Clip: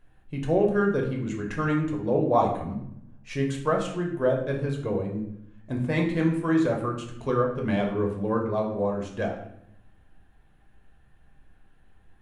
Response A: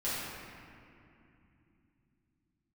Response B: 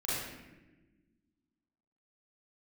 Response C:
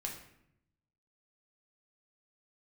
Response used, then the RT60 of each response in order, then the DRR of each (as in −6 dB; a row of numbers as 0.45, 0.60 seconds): C; 2.8, 1.2, 0.75 seconds; −11.5, −10.0, 0.0 decibels